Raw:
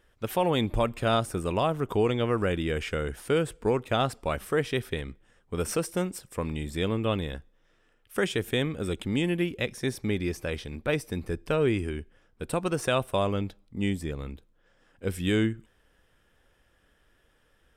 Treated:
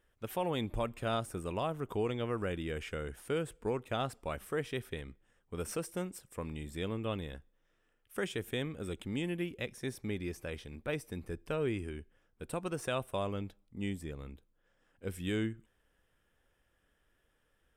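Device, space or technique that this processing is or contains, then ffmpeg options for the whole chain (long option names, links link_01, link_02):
exciter from parts: -filter_complex "[0:a]asplit=2[link_01][link_02];[link_02]highpass=frequency=4200:width=0.5412,highpass=frequency=4200:width=1.3066,asoftclip=type=tanh:threshold=-39dB,volume=-8.5dB[link_03];[link_01][link_03]amix=inputs=2:normalize=0,volume=-9dB"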